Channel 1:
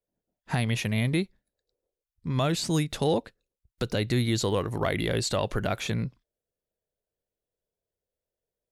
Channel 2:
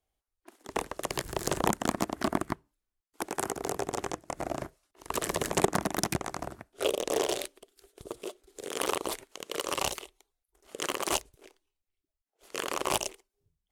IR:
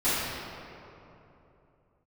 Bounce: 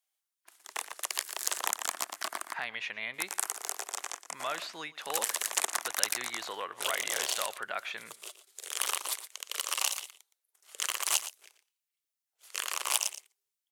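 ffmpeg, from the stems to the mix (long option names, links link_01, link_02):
-filter_complex "[0:a]lowpass=2000,adelay=2050,volume=1dB,asplit=2[link_01][link_02];[link_02]volume=-21dB[link_03];[1:a]volume=-1dB,asplit=2[link_04][link_05];[link_05]volume=-13dB[link_06];[link_03][link_06]amix=inputs=2:normalize=0,aecho=0:1:117:1[link_07];[link_01][link_04][link_07]amix=inputs=3:normalize=0,highpass=1200,highshelf=frequency=4200:gain=7"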